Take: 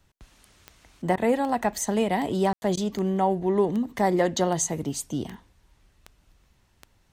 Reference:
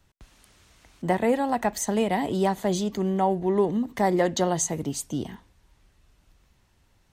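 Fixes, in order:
click removal
ambience match 0:02.53–0:02.62
repair the gap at 0:01.16/0:02.76, 11 ms

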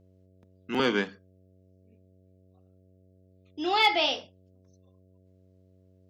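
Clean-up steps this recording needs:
clipped peaks rebuilt −12.5 dBFS
hum removal 93.3 Hz, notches 7

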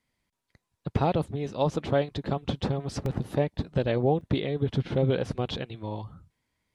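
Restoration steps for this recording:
repair the gap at 0:00.73/0:03.06/0:04.21, 1.9 ms

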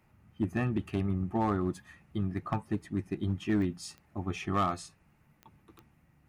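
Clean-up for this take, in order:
clipped peaks rebuilt −21.5 dBFS
click removal

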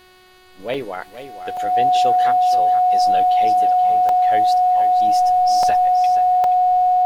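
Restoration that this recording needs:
hum removal 368.6 Hz, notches 13
notch filter 730 Hz, Q 30
repair the gap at 0:00.74/0:01.57/0:04.09/0:05.63/0:06.44, 2.5 ms
echo removal 477 ms −12 dB

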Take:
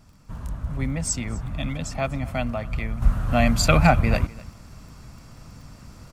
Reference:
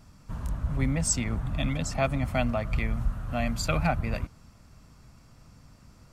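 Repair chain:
click removal
echo removal 249 ms −21 dB
level correction −9.5 dB, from 0:03.02

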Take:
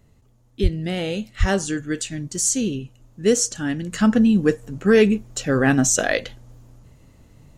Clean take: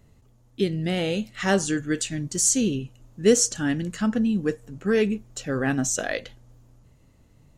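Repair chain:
high-pass at the plosives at 0:00.62/0:01.39
level correction −7 dB, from 0:03.92

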